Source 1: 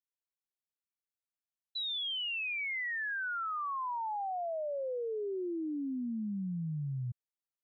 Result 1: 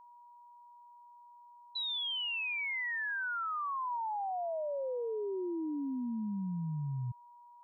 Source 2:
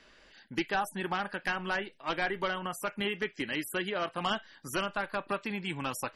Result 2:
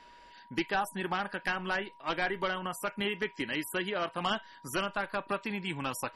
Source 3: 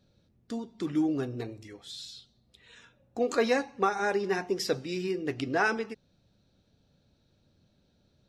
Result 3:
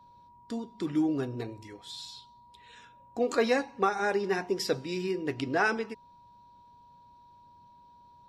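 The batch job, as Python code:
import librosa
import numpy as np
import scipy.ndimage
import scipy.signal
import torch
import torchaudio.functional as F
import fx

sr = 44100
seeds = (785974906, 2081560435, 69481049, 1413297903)

y = fx.notch(x, sr, hz=6300.0, q=14.0)
y = y + 10.0 ** (-54.0 / 20.0) * np.sin(2.0 * np.pi * 960.0 * np.arange(len(y)) / sr)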